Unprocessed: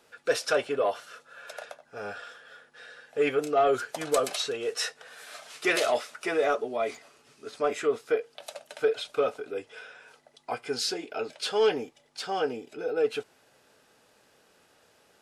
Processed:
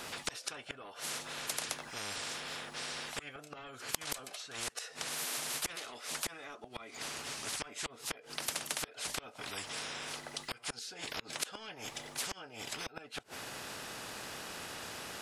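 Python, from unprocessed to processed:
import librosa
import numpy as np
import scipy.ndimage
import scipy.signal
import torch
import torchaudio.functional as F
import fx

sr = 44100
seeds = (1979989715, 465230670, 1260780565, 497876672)

y = fx.gate_flip(x, sr, shuts_db=-22.0, range_db=-32)
y = fx.spectral_comp(y, sr, ratio=10.0)
y = F.gain(torch.from_numpy(y), 8.5).numpy()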